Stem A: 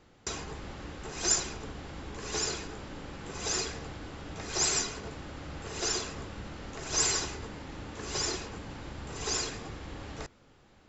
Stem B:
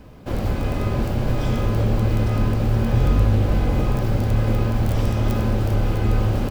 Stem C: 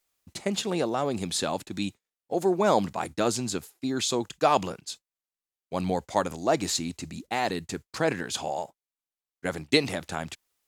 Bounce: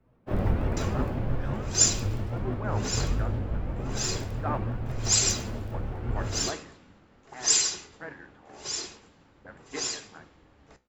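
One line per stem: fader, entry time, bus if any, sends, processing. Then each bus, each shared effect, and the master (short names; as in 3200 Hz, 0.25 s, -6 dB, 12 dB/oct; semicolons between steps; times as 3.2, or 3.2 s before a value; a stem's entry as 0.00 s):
+2.0 dB, 0.50 s, no send, dry
+1.5 dB, 0.00 s, no send, shaped vibrato saw up 5.9 Hz, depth 250 cents; auto duck -9 dB, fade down 1.80 s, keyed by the third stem
-12.0 dB, 0.00 s, no send, envelope low-pass 220–1700 Hz up, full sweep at -28 dBFS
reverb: off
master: flange 0.41 Hz, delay 7.3 ms, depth 9.6 ms, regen +73%; three-band expander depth 100%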